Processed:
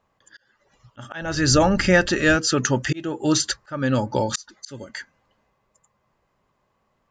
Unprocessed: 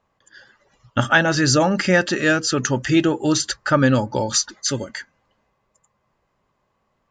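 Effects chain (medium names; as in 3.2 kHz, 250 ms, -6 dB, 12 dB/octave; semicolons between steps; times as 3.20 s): 1.21–2.35 s: wind noise 110 Hz -26 dBFS; slow attack 418 ms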